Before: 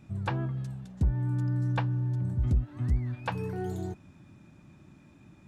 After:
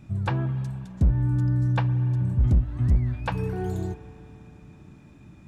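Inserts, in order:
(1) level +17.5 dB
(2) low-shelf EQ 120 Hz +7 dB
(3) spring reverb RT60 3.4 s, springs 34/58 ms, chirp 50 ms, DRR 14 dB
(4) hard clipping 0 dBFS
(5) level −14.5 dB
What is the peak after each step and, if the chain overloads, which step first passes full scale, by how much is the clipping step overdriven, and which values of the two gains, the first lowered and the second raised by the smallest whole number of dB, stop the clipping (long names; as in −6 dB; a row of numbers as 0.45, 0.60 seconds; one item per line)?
−1.0, +5.0, +5.5, 0.0, −14.5 dBFS
step 2, 5.5 dB
step 1 +11.5 dB, step 5 −8.5 dB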